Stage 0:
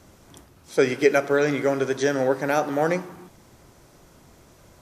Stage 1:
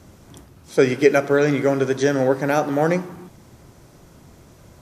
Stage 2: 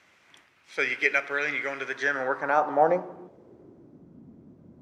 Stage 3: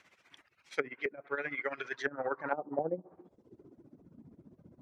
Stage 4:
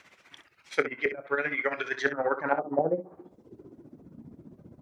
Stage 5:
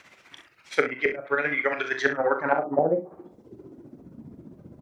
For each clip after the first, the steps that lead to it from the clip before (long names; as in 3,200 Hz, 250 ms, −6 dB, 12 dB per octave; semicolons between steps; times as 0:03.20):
parametric band 120 Hz +6 dB 2.8 octaves; level +1.5 dB
band-pass filter sweep 2,200 Hz → 240 Hz, 0:01.81–0:04.03; level +4 dB
reverb reduction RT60 0.89 s; amplitude tremolo 15 Hz, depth 77%; treble cut that deepens with the level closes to 330 Hz, closed at −24.5 dBFS
ambience of single reflections 26 ms −14 dB, 64 ms −11.5 dB; level +7 dB
double-tracking delay 41 ms −9 dB; level +3.5 dB